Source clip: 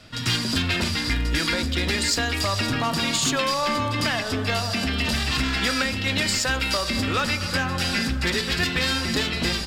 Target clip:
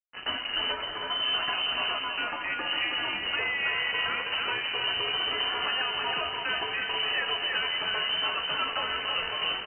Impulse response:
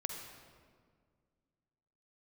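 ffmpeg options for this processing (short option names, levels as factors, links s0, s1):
-filter_complex "[0:a]asettb=1/sr,asplit=3[s0][s1][s2];[s0]atrim=end=1.934[s3];[s1]atrim=start=1.93:end=2.66,asetpts=PTS-STARTPTS,afade=t=in:d=0.004:c=qsin,afade=t=out:st=0.726:d=0.004:c=qsin,equalizer=f=82:t=o:w=2.3:g=-14.5[s4];[s2]atrim=start=2.656[s5];[s3][s4]acrossfade=d=0.004:c1=hsin:c2=qsin[s6];[s6][s5]acrossfade=d=0.004:c1=qsin:c2=hsin,acrusher=bits=3:mix=0:aa=0.5,flanger=delay=9.8:depth=7.1:regen=50:speed=0.28:shape=triangular,aecho=1:1:321:0.596,acompressor=threshold=0.0708:ratio=6,asettb=1/sr,asplit=3[s7][s8][s9];[s7]atrim=end=0.724[s10];[s8]atrim=start=0.72:end=1.22,asetpts=PTS-STARTPTS,afade=t=in:d=0.004:c=qsin,afade=t=out:st=0.496:d=0.004:c=qsin,equalizer=f=310:t=o:w=1.9:g=-14[s11];[s9]atrim=start=1.216[s12];[s10][s11]acrossfade=d=0.004:c1=hsin:c2=qsin[s13];[s13][s12]acrossfade=d=0.004:c1=qsin:c2=hsin,lowpass=f=2600:t=q:w=0.5098,lowpass=f=2600:t=q:w=0.6013,lowpass=f=2600:t=q:w=0.9,lowpass=f=2600:t=q:w=2.563,afreqshift=-3100"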